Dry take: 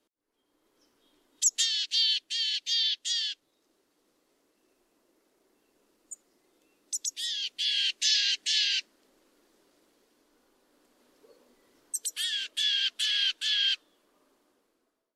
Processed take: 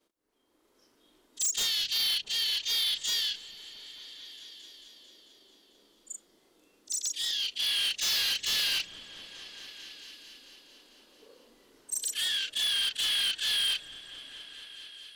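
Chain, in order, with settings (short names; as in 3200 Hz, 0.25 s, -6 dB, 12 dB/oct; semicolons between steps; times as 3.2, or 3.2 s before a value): short-time reversal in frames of 85 ms; hard clip -31.5 dBFS, distortion -8 dB; repeats that get brighter 0.222 s, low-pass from 200 Hz, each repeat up 1 oct, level -6 dB; gain +5.5 dB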